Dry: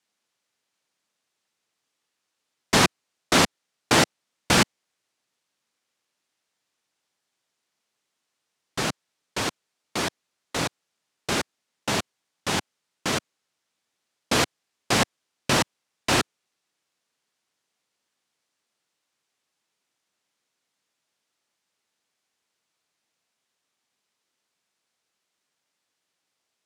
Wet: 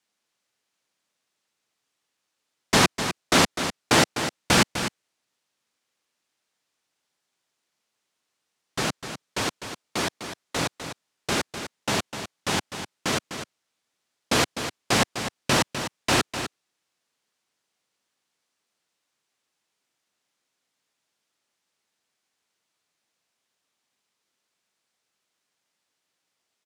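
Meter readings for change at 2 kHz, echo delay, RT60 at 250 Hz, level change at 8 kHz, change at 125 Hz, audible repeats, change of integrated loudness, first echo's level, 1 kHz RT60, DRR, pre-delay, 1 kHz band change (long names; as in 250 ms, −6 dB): +0.5 dB, 252 ms, no reverb audible, +0.5 dB, +0.5 dB, 1, 0.0 dB, −9.5 dB, no reverb audible, no reverb audible, no reverb audible, +0.5 dB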